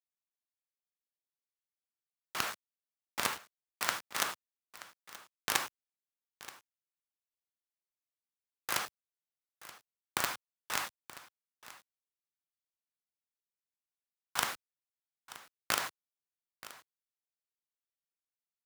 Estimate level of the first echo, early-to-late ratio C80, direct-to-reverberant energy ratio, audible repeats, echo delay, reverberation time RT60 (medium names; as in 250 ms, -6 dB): -17.5 dB, no reverb, no reverb, 1, 928 ms, no reverb